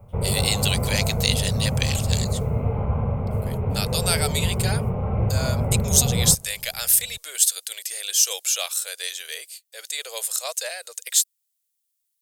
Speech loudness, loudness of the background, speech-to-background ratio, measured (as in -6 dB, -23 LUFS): -23.0 LUFS, -25.0 LUFS, 2.0 dB